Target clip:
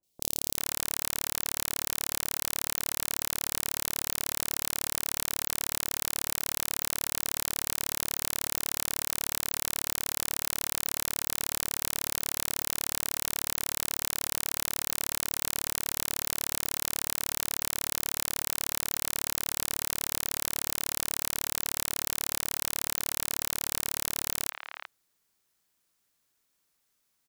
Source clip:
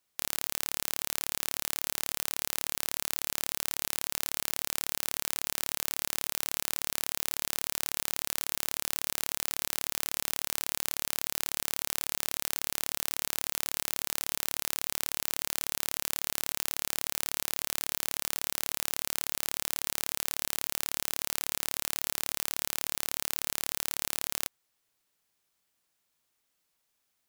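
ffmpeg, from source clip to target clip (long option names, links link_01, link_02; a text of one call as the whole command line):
ffmpeg -i in.wav -filter_complex "[0:a]acrossover=split=720|2800[link_01][link_02][link_03];[link_03]adelay=30[link_04];[link_02]adelay=390[link_05];[link_01][link_05][link_04]amix=inputs=3:normalize=0,volume=2.5dB" out.wav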